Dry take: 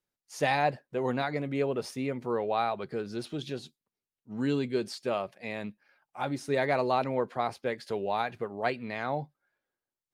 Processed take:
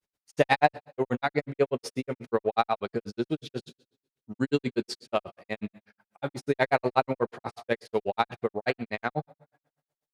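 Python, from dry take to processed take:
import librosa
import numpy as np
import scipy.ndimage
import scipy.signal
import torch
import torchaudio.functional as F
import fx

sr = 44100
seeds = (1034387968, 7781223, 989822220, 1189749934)

y = fx.rev_double_slope(x, sr, seeds[0], early_s=0.58, late_s=1.5, knee_db=-24, drr_db=12.5)
y = fx.granulator(y, sr, seeds[1], grain_ms=77.0, per_s=8.2, spray_ms=27.0, spread_st=0)
y = fx.cheby_harmonics(y, sr, harmonics=(7,), levels_db=(-33,), full_scale_db=-12.5)
y = y * 10.0 ** (8.5 / 20.0)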